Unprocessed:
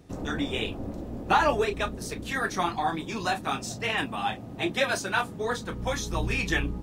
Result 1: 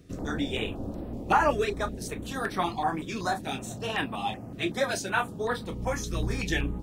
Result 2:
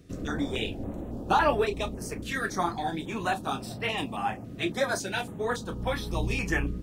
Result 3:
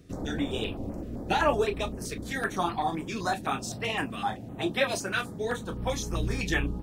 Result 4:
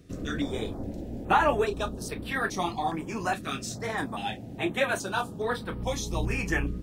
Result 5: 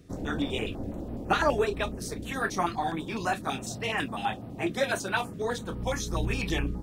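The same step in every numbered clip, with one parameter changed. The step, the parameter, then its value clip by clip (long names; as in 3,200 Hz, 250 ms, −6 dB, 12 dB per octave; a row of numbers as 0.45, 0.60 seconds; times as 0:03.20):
notch on a step sequencer, speed: 5.3, 3.6, 7.8, 2.4, 12 Hertz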